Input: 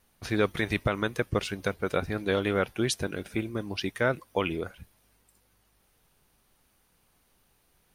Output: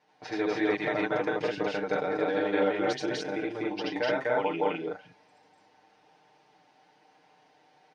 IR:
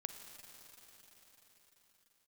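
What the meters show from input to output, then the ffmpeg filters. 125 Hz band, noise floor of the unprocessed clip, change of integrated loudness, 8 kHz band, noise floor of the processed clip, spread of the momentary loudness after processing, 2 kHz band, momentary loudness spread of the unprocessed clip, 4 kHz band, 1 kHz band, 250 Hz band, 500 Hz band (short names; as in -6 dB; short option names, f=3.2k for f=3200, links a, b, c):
-11.0 dB, -68 dBFS, +0.5 dB, -10.5 dB, -64 dBFS, 6 LU, -0.5 dB, 6 LU, -3.5 dB, +3.0 dB, 0.0 dB, +2.0 dB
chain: -af "highshelf=f=2.4k:g=-11,aecho=1:1:6.6:0.93,acompressor=threshold=-45dB:ratio=1.5,highpass=300,equalizer=f=820:t=q:w=4:g=10,equalizer=f=1.2k:t=q:w=4:g=-7,equalizer=f=1.9k:t=q:w=4:g=3,equalizer=f=5.1k:t=q:w=4:g=3,lowpass=f=6k:w=0.5412,lowpass=f=6k:w=1.3066,aecho=1:1:78.72|113.7|247.8|288.6:1|0.355|1|1,volume=2dB"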